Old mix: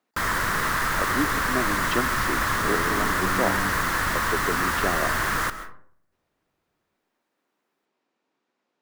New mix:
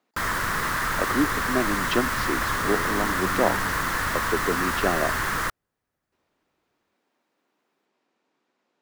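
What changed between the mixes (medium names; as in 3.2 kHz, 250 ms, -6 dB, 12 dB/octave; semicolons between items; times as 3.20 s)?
speech +4.0 dB; reverb: off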